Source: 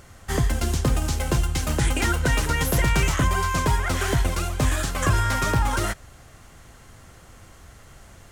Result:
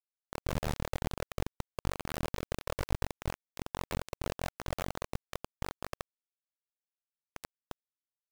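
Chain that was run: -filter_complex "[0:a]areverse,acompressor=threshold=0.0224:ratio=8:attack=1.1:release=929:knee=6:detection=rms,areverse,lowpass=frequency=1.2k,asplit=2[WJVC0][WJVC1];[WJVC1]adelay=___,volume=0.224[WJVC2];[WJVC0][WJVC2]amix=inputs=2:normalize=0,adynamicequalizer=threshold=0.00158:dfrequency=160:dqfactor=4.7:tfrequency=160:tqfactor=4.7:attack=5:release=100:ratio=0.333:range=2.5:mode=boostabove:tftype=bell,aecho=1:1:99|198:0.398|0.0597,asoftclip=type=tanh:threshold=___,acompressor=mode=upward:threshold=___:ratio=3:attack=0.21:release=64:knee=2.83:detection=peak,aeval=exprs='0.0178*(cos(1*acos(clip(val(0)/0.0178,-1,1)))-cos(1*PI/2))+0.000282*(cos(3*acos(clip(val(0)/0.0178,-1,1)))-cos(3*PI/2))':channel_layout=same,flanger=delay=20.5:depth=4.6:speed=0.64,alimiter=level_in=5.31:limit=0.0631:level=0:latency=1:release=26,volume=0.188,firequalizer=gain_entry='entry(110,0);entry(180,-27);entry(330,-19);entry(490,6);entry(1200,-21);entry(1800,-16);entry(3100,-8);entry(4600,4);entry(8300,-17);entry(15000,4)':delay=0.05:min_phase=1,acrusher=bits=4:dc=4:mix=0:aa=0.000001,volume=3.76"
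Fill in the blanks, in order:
13, 0.0178, 0.00501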